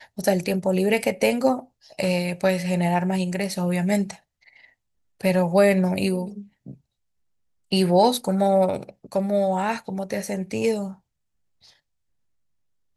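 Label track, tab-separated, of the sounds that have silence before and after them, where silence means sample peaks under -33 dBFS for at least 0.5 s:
5.210000	6.720000	sound
7.720000	10.920000	sound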